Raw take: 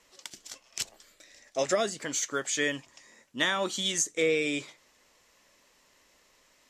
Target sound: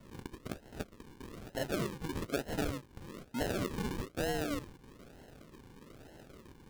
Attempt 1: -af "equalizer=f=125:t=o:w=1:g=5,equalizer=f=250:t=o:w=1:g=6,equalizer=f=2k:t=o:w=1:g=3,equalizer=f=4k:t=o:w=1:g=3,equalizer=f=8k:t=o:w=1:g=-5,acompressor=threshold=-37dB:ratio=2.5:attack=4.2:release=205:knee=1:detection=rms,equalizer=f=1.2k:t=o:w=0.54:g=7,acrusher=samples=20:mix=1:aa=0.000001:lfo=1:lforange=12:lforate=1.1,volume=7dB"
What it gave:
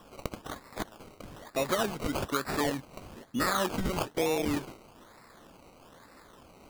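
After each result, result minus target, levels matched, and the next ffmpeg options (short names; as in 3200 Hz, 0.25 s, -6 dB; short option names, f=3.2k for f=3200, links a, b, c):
decimation with a swept rate: distortion -11 dB; compressor: peak gain reduction -5.5 dB
-af "equalizer=f=125:t=o:w=1:g=5,equalizer=f=250:t=o:w=1:g=6,equalizer=f=2k:t=o:w=1:g=3,equalizer=f=4k:t=o:w=1:g=3,equalizer=f=8k:t=o:w=1:g=-5,acompressor=threshold=-37dB:ratio=2.5:attack=4.2:release=205:knee=1:detection=rms,equalizer=f=1.2k:t=o:w=0.54:g=7,acrusher=samples=53:mix=1:aa=0.000001:lfo=1:lforange=31.8:lforate=1.1,volume=7dB"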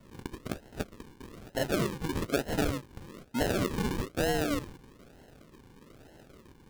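compressor: peak gain reduction -5.5 dB
-af "equalizer=f=125:t=o:w=1:g=5,equalizer=f=250:t=o:w=1:g=6,equalizer=f=2k:t=o:w=1:g=3,equalizer=f=4k:t=o:w=1:g=3,equalizer=f=8k:t=o:w=1:g=-5,acompressor=threshold=-46.5dB:ratio=2.5:attack=4.2:release=205:knee=1:detection=rms,equalizer=f=1.2k:t=o:w=0.54:g=7,acrusher=samples=53:mix=1:aa=0.000001:lfo=1:lforange=31.8:lforate=1.1,volume=7dB"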